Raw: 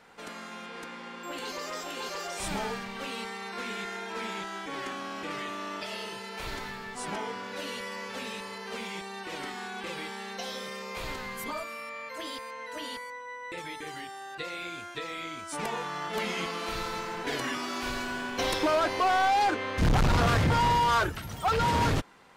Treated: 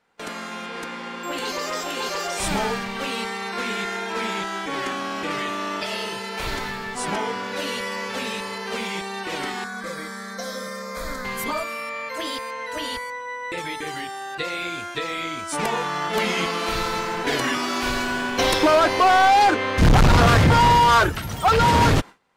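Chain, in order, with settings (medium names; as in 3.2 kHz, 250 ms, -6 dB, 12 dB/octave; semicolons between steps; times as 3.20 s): gate with hold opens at -34 dBFS; 9.64–11.25 s: static phaser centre 560 Hz, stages 8; 12.57–13.25 s: resonant low shelf 110 Hz +9.5 dB, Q 1.5; trim +9 dB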